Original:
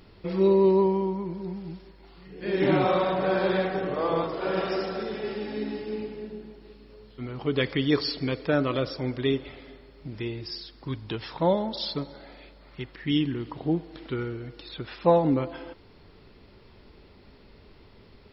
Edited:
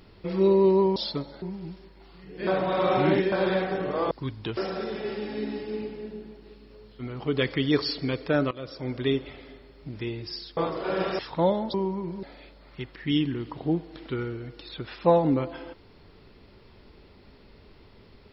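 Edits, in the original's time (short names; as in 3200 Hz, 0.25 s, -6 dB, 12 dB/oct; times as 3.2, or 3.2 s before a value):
0.96–1.45 swap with 11.77–12.23
2.5–3.35 reverse
4.14–4.76 swap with 10.76–11.22
8.7–9.19 fade in, from -19.5 dB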